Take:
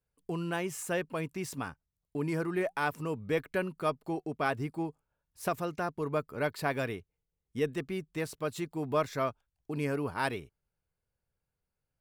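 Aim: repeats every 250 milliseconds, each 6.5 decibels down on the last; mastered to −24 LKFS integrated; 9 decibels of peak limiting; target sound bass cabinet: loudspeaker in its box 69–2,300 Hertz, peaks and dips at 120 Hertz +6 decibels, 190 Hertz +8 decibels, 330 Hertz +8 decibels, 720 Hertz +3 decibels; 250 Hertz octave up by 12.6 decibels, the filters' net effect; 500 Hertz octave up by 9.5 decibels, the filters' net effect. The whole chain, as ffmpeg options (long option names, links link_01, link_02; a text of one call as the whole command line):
ffmpeg -i in.wav -af "equalizer=frequency=250:width_type=o:gain=6,equalizer=frequency=500:width_type=o:gain=7,alimiter=limit=-20.5dB:level=0:latency=1,highpass=frequency=69:width=0.5412,highpass=frequency=69:width=1.3066,equalizer=frequency=120:width_type=q:width=4:gain=6,equalizer=frequency=190:width_type=q:width=4:gain=8,equalizer=frequency=330:width_type=q:width=4:gain=8,equalizer=frequency=720:width_type=q:width=4:gain=3,lowpass=frequency=2300:width=0.5412,lowpass=frequency=2300:width=1.3066,aecho=1:1:250|500|750|1000|1250|1500:0.473|0.222|0.105|0.0491|0.0231|0.0109,volume=2.5dB" out.wav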